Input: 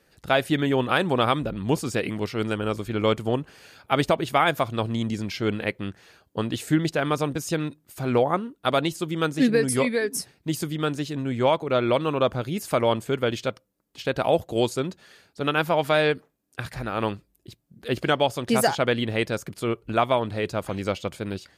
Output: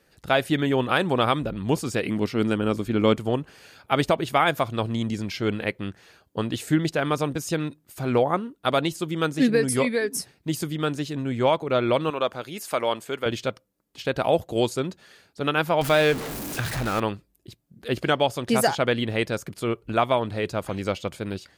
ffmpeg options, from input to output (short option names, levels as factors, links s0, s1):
-filter_complex "[0:a]asettb=1/sr,asplit=3[s0][s1][s2];[s0]atrim=end=2.094[s3];[s1]atrim=start=2.09:end=3.16,asetpts=PTS-STARTPTS,afade=t=in:d=0.004:c=qsin,afade=t=out:st=1.066:d=0.004:c=qsin,equalizer=f=250:t=o:w=0.99:g=7[s4];[s2]atrim=start=3.156[s5];[s3][s4]acrossfade=d=0.004:c1=hsin:c2=qsin[s6];[s6][s5]acrossfade=d=0.004:c1=qsin:c2=hsin,asettb=1/sr,asplit=3[s7][s8][s9];[s7]atrim=end=12.104[s10];[s8]atrim=start=12.1:end=13.26,asetpts=PTS-STARTPTS,afade=t=in:d=0.004:c=qsin,afade=t=out:st=1.156:d=0.004:c=qsin,highpass=f=590:p=1[s11];[s9]atrim=start=13.256[s12];[s10][s11]acrossfade=d=0.004:c1=hsin:c2=qsin[s13];[s13][s12]acrossfade=d=0.004:c1=qsin:c2=hsin,asettb=1/sr,asplit=3[s14][s15][s16];[s14]atrim=end=15.814[s17];[s15]atrim=start=15.81:end=17,asetpts=PTS-STARTPTS,afade=t=in:d=0.004:c=qsin,afade=t=out:st=1.186:d=0.004:c=qsin,aeval=exprs='val(0)+0.5*0.0473*sgn(val(0))':c=same[s18];[s16]atrim=start=16.996[s19];[s17][s18]acrossfade=d=0.004:c1=hsin:c2=qsin[s20];[s20][s19]acrossfade=d=0.004:c1=qsin:c2=hsin"